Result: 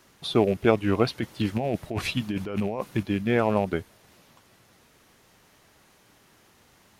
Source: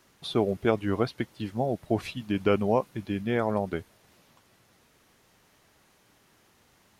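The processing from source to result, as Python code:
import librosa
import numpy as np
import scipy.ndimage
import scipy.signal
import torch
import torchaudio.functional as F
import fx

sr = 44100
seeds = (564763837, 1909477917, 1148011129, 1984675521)

y = fx.rattle_buzz(x, sr, strikes_db=-34.0, level_db=-34.0)
y = fx.over_compress(y, sr, threshold_db=-31.0, ratio=-1.0, at=(1.07, 3.03))
y = F.gain(torch.from_numpy(y), 4.0).numpy()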